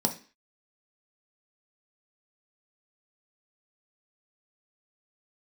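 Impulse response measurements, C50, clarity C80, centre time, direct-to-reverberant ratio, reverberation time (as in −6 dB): 13.0 dB, 19.0 dB, 10 ms, 3.5 dB, non-exponential decay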